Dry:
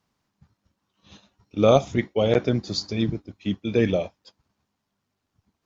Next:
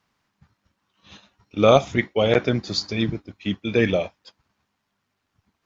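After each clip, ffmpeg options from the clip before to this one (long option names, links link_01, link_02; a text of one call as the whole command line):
ffmpeg -i in.wav -af "equalizer=frequency=1900:width=0.58:gain=7.5" out.wav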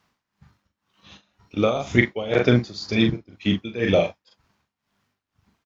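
ffmpeg -i in.wav -filter_complex "[0:a]asplit=2[link_01][link_02];[link_02]adelay=41,volume=-5.5dB[link_03];[link_01][link_03]amix=inputs=2:normalize=0,tremolo=f=2:d=0.86,volume=4dB" out.wav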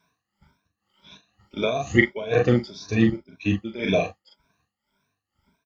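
ffmpeg -i in.wav -af "afftfilt=real='re*pow(10,19/40*sin(2*PI*(1.6*log(max(b,1)*sr/1024/100)/log(2)-(1.8)*(pts-256)/sr)))':imag='im*pow(10,19/40*sin(2*PI*(1.6*log(max(b,1)*sr/1024/100)/log(2)-(1.8)*(pts-256)/sr)))':win_size=1024:overlap=0.75,volume=-5dB" out.wav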